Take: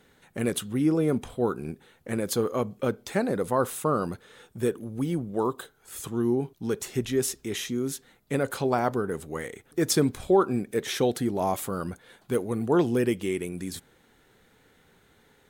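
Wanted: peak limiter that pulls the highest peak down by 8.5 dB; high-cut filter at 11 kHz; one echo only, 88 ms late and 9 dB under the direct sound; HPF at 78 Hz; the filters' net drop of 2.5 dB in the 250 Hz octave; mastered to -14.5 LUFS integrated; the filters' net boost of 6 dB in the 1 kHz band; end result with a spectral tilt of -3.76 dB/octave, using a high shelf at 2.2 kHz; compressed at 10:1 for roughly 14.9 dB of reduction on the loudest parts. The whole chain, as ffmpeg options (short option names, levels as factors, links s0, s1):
-af "highpass=78,lowpass=11000,equalizer=f=250:t=o:g=-4,equalizer=f=1000:t=o:g=6,highshelf=f=2200:g=9,acompressor=threshold=0.0316:ratio=10,alimiter=level_in=1.06:limit=0.0631:level=0:latency=1,volume=0.944,aecho=1:1:88:0.355,volume=12.6"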